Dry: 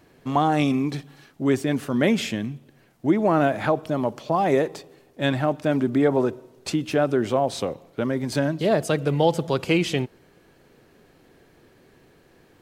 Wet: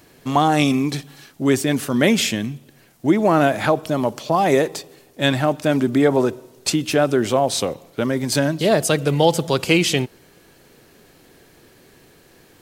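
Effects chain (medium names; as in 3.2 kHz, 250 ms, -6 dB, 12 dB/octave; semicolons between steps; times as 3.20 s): treble shelf 3.6 kHz +11 dB; trim +3.5 dB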